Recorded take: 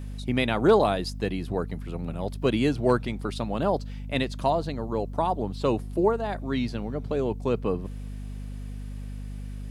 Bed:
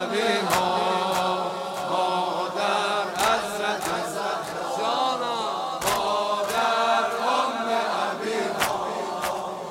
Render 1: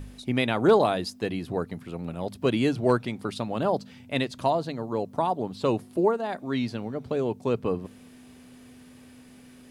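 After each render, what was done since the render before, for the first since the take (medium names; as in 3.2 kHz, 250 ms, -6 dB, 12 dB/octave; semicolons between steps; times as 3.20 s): de-hum 50 Hz, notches 4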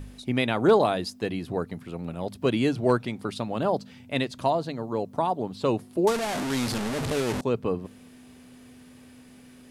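6.07–7.41 s: one-bit delta coder 64 kbps, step -23 dBFS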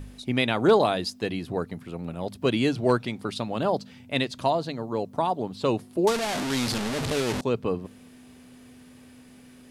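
dynamic bell 4.1 kHz, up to +4 dB, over -44 dBFS, Q 0.72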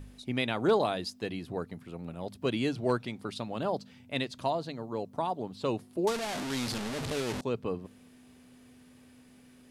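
trim -6.5 dB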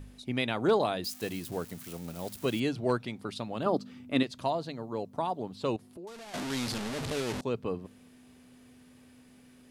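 1.04–2.60 s: zero-crossing glitches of -34.5 dBFS; 3.66–4.23 s: small resonant body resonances 290/1200 Hz, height 11 dB, ringing for 20 ms; 5.76–6.34 s: compression 3:1, threshold -47 dBFS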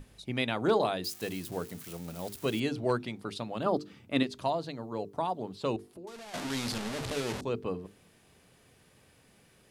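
hum notches 50/100/150/200/250/300/350/400/450 Hz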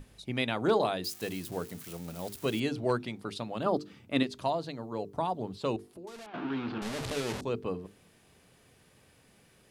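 5.09–5.58 s: bass shelf 100 Hz +11.5 dB; 6.26–6.82 s: cabinet simulation 130–2600 Hz, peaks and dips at 330 Hz +9 dB, 570 Hz -8 dB, 1.4 kHz +3 dB, 2 kHz -9 dB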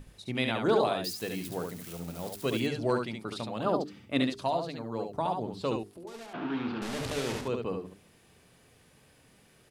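delay 70 ms -5 dB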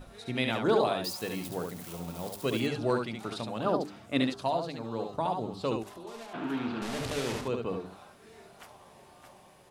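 add bed -27.5 dB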